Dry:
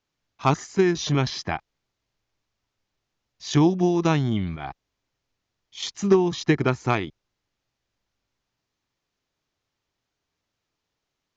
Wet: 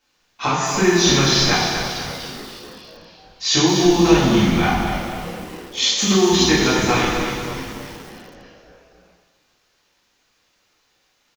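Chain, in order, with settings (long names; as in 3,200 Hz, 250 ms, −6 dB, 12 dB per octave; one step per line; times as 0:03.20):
low-shelf EQ 430 Hz −10 dB
in parallel at +3 dB: brickwall limiter −17.5 dBFS, peak gain reduction 9.5 dB
on the sum: downward compressor 10 to 1, threshold −23 dBFS, peak gain reduction 11 dB
on a send: echo with shifted repeats 293 ms, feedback 62%, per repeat −130 Hz, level −11.5 dB
on the sum: coupled-rooms reverb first 1 s, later 2.7 s, from −18 dB, DRR −8.5 dB
feedback echo at a low word length 241 ms, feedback 55%, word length 6 bits, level −8 dB
level +2 dB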